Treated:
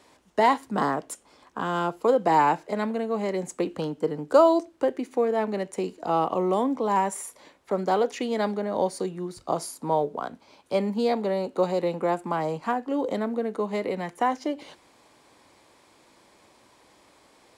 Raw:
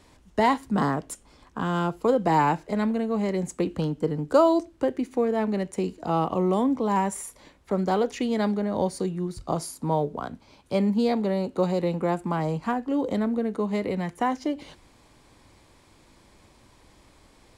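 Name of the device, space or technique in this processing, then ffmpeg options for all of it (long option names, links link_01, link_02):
filter by subtraction: -filter_complex "[0:a]asplit=2[link_01][link_02];[link_02]lowpass=560,volume=-1[link_03];[link_01][link_03]amix=inputs=2:normalize=0"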